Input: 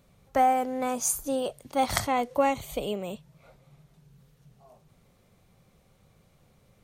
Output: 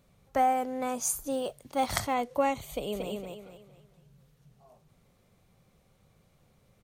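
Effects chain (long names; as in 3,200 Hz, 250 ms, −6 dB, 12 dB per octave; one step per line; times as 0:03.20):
0:01.30–0:02.14: noise that follows the level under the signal 31 dB
0:02.69–0:03.11: delay throw 230 ms, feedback 35%, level −3.5 dB
level −3 dB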